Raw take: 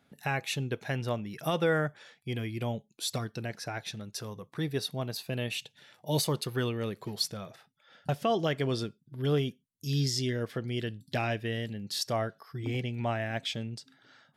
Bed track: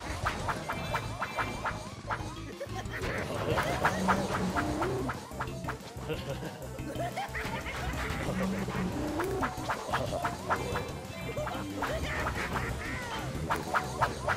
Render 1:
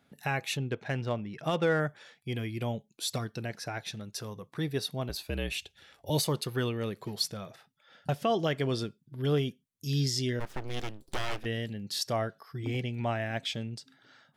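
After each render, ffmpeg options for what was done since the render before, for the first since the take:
-filter_complex "[0:a]asettb=1/sr,asplit=3[s0][s1][s2];[s0]atrim=end=0.574[s3];[s1]atrim=start=0.57:end=1.8,asetpts=PTS-STARTPTS,afade=t=in:d=0.004:c=qsin,afade=t=out:st=1.226:d=0.004:c=qsin,adynamicsmooth=sensitivity=7.5:basefreq=3600[s4];[s2]atrim=start=1.796[s5];[s3][s4]acrossfade=d=0.004:c1=hsin:c2=qsin[s6];[s6][s5]acrossfade=d=0.004:c1=qsin:c2=hsin,asettb=1/sr,asplit=3[s7][s8][s9];[s7]atrim=end=5.094[s10];[s8]atrim=start=5.09:end=6.1,asetpts=PTS-STARTPTS,afade=t=in:d=0.004:c=qsin,afade=t=out:st=1.006:d=0.004:c=qsin,afreqshift=-53[s11];[s9]atrim=start=6.096[s12];[s10][s11]acrossfade=d=0.004:c1=hsin:c2=qsin[s13];[s13][s12]acrossfade=d=0.004:c1=qsin:c2=hsin,asplit=3[s14][s15][s16];[s14]afade=t=out:st=10.39:d=0.02[s17];[s15]aeval=exprs='abs(val(0))':c=same,afade=t=in:st=10.39:d=0.02,afade=t=out:st=11.44:d=0.02[s18];[s16]afade=t=in:st=11.44:d=0.02[s19];[s17][s18][s19]amix=inputs=3:normalize=0"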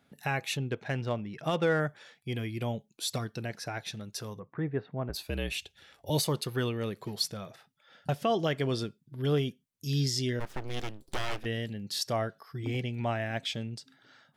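-filter_complex "[0:a]asplit=3[s0][s1][s2];[s0]afade=t=out:st=4.38:d=0.02[s3];[s1]lowpass=f=1900:w=0.5412,lowpass=f=1900:w=1.3066,afade=t=in:st=4.38:d=0.02,afade=t=out:st=5.13:d=0.02[s4];[s2]afade=t=in:st=5.13:d=0.02[s5];[s3][s4][s5]amix=inputs=3:normalize=0"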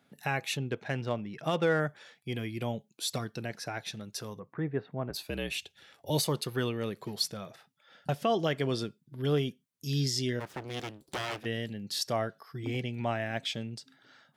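-af "highpass=110"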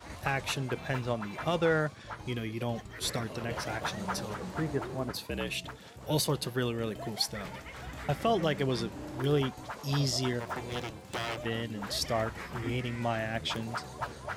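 -filter_complex "[1:a]volume=0.398[s0];[0:a][s0]amix=inputs=2:normalize=0"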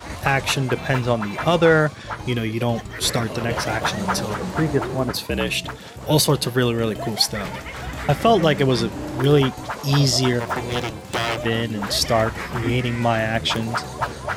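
-af "volume=3.98,alimiter=limit=0.708:level=0:latency=1"

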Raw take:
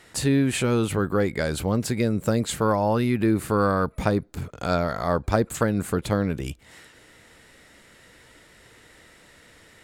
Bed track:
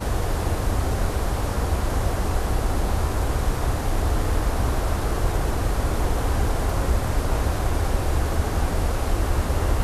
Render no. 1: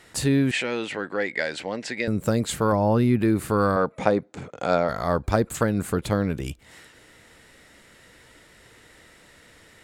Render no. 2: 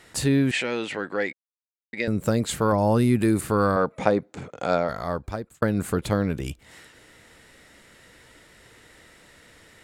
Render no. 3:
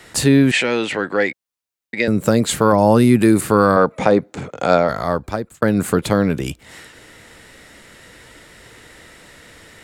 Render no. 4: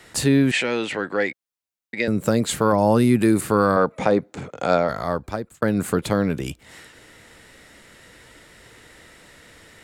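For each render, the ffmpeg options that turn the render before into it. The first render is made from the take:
-filter_complex "[0:a]asettb=1/sr,asplit=3[s0][s1][s2];[s0]atrim=end=0.514[s3];[s1]atrim=start=0.51:end=2.08,asetpts=PTS-STARTPTS,afade=t=in:d=0.004:c=qsin,afade=t=out:st=1.566:d=0.004:c=qsin,highpass=380,equalizer=f=400:t=q:w=4:g=-5,equalizer=f=1200:t=q:w=4:g=-9,equalizer=f=1900:t=q:w=4:g=10,equalizer=f=2700:t=q:w=4:g=4,equalizer=f=6600:t=q:w=4:g=-3,lowpass=f=6900:w=0.5412,lowpass=f=6900:w=1.3066[s4];[s2]atrim=start=2.076[s5];[s3][s4]acrossfade=d=0.004:c1=hsin:c2=qsin[s6];[s6][s5]acrossfade=d=0.004:c1=qsin:c2=hsin,asettb=1/sr,asplit=3[s7][s8][s9];[s7]atrim=end=2.724[s10];[s8]atrim=start=2.72:end=3.19,asetpts=PTS-STARTPTS,afade=t=in:d=0.004:c=qsin,afade=t=out:st=0.466:d=0.004:c=qsin,tiltshelf=f=720:g=4[s11];[s9]atrim=start=3.186[s12];[s10][s11]acrossfade=d=0.004:c1=hsin:c2=qsin[s13];[s13][s12]acrossfade=d=0.004:c1=qsin:c2=hsin,asettb=1/sr,asplit=3[s14][s15][s16];[s14]atrim=end=3.764[s17];[s15]atrim=start=3.76:end=4.89,asetpts=PTS-STARTPTS,afade=t=in:d=0.004:c=qsin,afade=t=out:st=1.126:d=0.004:c=qsin,highpass=170,equalizer=f=520:t=q:w=4:g=6,equalizer=f=780:t=q:w=4:g=5,equalizer=f=2100:t=q:w=4:g=3,equalizer=f=4700:t=q:w=4:g=-5,lowpass=f=7700:w=0.5412,lowpass=f=7700:w=1.3066[s18];[s16]atrim=start=4.886[s19];[s17][s18]acrossfade=d=0.004:c1=hsin:c2=qsin[s20];[s20][s19]acrossfade=d=0.004:c1=qsin:c2=hsin"
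-filter_complex "[0:a]asettb=1/sr,asplit=3[s0][s1][s2];[s0]atrim=end=2.784[s3];[s1]atrim=start=2.78:end=3.41,asetpts=PTS-STARTPTS,afade=t=in:d=0.004:c=qsin,afade=t=out:st=0.626:d=0.004:c=qsin,equalizer=f=8700:t=o:w=1:g=14.5[s4];[s2]atrim=start=3.406[s5];[s3][s4]acrossfade=d=0.004:c1=hsin:c2=qsin[s6];[s6][s5]acrossfade=d=0.004:c1=qsin:c2=hsin,asplit=4[s7][s8][s9][s10];[s7]atrim=end=1.33,asetpts=PTS-STARTPTS,afade=t=out:st=1.326:d=0.004:c=hsin[s11];[s8]atrim=start=1.33:end=1.93,asetpts=PTS-STARTPTS,volume=0[s12];[s9]atrim=start=1.93:end=5.62,asetpts=PTS-STARTPTS,afade=t=in:d=0.004:c=hsin,afade=t=out:st=2.39:d=1.3:c=qsin[s13];[s10]atrim=start=5.62,asetpts=PTS-STARTPTS,afade=t=in:d=0.004:c=hsin[s14];[s11][s12][s13][s14]concat=n=4:v=0:a=1"
-filter_complex "[0:a]acrossover=split=110|1400|5700[s0][s1][s2][s3];[s0]acompressor=threshold=0.00562:ratio=6[s4];[s4][s1][s2][s3]amix=inputs=4:normalize=0,alimiter=level_in=2.66:limit=0.891:release=50:level=0:latency=1"
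-af "volume=0.596"

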